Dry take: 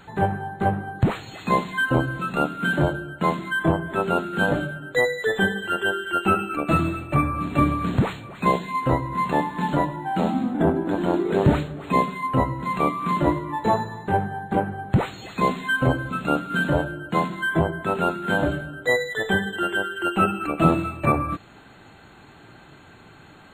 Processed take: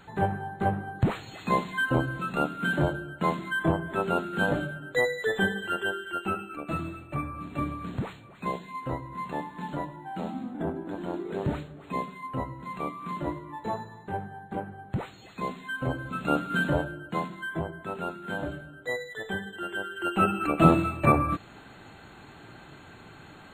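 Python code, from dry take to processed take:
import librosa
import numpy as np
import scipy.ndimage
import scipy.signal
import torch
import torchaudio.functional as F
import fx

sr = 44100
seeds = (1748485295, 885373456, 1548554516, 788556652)

y = fx.gain(x, sr, db=fx.line((5.67, -4.5), (6.44, -11.5), (15.74, -11.5), (16.42, -2.0), (17.53, -11.0), (19.59, -11.0), (20.47, -0.5)))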